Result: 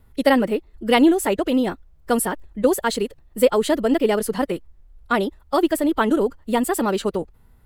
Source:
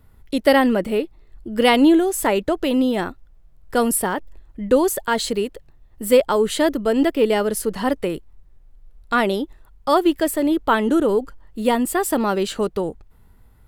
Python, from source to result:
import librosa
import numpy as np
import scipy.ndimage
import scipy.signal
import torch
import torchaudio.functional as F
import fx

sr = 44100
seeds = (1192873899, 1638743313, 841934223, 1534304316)

y = fx.stretch_vocoder(x, sr, factor=0.56)